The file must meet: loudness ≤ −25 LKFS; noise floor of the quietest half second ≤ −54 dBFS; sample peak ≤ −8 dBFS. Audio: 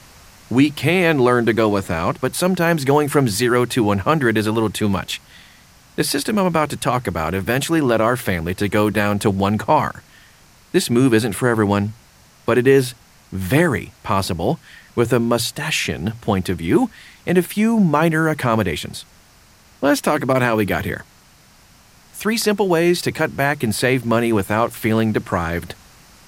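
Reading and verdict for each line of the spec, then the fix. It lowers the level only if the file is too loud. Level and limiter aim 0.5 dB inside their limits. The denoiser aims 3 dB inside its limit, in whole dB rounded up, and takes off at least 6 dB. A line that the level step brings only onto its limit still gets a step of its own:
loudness −18.5 LKFS: out of spec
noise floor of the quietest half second −50 dBFS: out of spec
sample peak −3.0 dBFS: out of spec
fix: level −7 dB

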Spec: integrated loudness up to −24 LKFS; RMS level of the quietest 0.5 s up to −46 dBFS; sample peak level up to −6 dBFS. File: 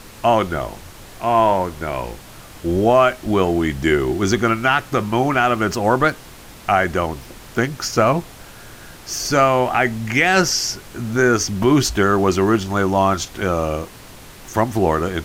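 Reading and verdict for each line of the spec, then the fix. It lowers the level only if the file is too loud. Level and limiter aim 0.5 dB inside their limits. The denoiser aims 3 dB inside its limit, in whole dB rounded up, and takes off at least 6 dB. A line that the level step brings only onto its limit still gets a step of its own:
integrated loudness −18.5 LKFS: out of spec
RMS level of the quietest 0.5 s −40 dBFS: out of spec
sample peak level −3.5 dBFS: out of spec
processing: broadband denoise 6 dB, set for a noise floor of −40 dBFS
level −6 dB

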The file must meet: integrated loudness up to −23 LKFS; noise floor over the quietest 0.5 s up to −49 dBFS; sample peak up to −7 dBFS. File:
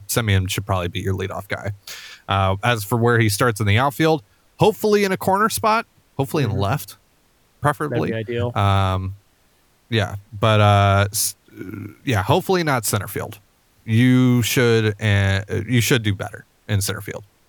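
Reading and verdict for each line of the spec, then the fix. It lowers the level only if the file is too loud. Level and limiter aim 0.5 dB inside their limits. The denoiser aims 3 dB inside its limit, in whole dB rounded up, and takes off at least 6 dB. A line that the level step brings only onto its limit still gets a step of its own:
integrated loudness −19.5 LKFS: out of spec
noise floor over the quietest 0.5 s −59 dBFS: in spec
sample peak −2.5 dBFS: out of spec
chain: level −4 dB
brickwall limiter −7.5 dBFS

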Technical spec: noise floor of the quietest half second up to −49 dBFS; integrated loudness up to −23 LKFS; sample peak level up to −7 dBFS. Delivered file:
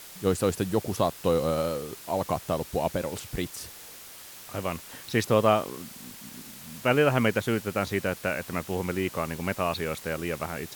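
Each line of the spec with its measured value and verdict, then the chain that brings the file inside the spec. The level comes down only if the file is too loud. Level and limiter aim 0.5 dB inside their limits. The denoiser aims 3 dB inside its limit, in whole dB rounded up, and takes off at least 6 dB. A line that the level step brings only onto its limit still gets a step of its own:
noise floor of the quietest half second −46 dBFS: out of spec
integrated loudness −28.0 LKFS: in spec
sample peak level −8.0 dBFS: in spec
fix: broadband denoise 6 dB, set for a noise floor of −46 dBFS

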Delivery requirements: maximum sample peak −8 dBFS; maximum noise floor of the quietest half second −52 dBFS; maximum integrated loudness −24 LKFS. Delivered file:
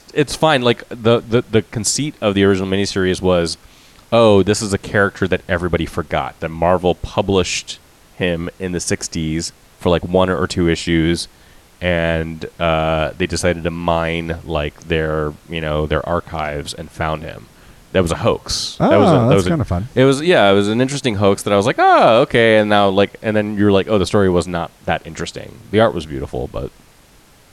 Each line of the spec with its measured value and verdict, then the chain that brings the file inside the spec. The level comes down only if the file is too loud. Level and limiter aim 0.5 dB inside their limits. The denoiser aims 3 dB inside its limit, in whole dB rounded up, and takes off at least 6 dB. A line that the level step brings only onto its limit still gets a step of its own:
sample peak −1.5 dBFS: out of spec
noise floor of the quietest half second −48 dBFS: out of spec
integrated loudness −16.5 LKFS: out of spec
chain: level −8 dB

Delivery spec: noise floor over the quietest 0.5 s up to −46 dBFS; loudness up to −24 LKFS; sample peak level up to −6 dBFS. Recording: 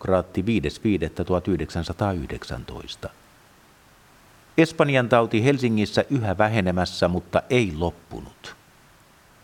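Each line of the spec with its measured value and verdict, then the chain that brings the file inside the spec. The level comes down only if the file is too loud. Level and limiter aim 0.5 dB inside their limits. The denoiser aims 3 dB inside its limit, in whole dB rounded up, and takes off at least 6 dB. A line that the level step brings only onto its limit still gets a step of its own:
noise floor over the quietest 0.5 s −54 dBFS: in spec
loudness −23.0 LKFS: out of spec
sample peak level −4.0 dBFS: out of spec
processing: level −1.5 dB
brickwall limiter −6.5 dBFS

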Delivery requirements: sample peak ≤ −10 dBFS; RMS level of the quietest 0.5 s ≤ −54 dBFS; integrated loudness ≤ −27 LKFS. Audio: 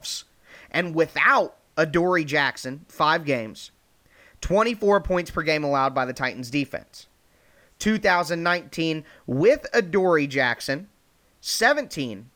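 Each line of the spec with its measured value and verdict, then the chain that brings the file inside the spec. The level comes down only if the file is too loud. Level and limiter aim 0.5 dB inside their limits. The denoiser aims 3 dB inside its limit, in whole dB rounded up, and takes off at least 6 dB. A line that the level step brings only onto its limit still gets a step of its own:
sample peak −5.5 dBFS: out of spec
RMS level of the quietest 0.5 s −62 dBFS: in spec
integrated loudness −23.0 LKFS: out of spec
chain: level −4.5 dB
brickwall limiter −10.5 dBFS

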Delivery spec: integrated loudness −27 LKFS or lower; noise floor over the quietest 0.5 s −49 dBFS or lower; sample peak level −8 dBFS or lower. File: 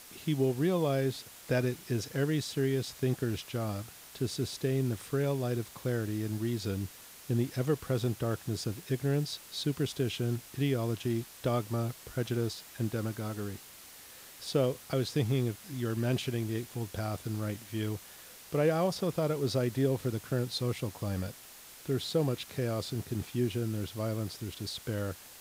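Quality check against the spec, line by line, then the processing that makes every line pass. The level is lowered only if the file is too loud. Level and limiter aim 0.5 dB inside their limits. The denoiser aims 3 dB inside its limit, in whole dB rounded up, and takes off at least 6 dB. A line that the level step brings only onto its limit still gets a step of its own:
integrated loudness −33.0 LKFS: in spec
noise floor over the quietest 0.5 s −51 dBFS: in spec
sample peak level −16.0 dBFS: in spec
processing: no processing needed

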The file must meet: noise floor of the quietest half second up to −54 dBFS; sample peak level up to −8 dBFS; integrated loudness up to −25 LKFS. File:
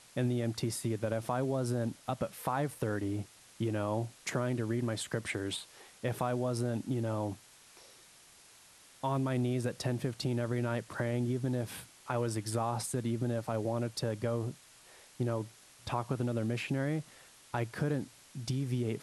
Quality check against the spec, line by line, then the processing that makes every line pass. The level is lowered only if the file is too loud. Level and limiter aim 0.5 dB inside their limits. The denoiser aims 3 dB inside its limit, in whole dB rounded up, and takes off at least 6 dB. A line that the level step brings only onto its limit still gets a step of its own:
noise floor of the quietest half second −59 dBFS: in spec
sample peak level −19.0 dBFS: in spec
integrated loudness −35.0 LKFS: in spec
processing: no processing needed

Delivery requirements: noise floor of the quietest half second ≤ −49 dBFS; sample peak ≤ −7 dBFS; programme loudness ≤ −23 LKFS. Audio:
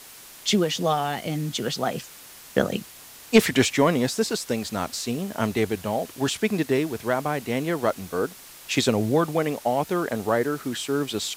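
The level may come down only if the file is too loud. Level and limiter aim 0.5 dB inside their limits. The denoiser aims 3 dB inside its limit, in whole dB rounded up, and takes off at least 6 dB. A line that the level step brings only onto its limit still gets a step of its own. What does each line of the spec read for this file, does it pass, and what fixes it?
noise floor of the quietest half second −45 dBFS: out of spec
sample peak −5.0 dBFS: out of spec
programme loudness −25.0 LKFS: in spec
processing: broadband denoise 7 dB, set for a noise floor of −45 dBFS
brickwall limiter −7.5 dBFS

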